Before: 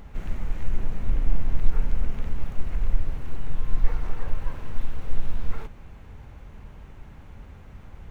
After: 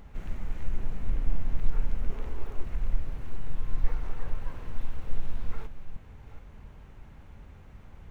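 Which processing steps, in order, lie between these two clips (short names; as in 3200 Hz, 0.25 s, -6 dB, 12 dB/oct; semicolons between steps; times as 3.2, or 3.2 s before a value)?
reverse delay 0.426 s, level -12.5 dB; 2.1–2.64 fifteen-band EQ 160 Hz -11 dB, 400 Hz +9 dB, 1000 Hz +4 dB; gain -5 dB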